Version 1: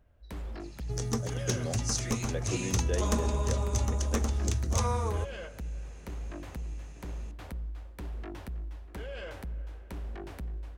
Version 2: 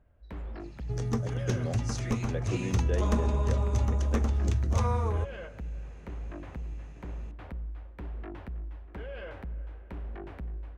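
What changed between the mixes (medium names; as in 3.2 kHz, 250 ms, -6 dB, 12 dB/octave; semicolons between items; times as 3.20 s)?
first sound: add tone controls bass -3 dB, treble -8 dB; master: add tone controls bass +3 dB, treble -12 dB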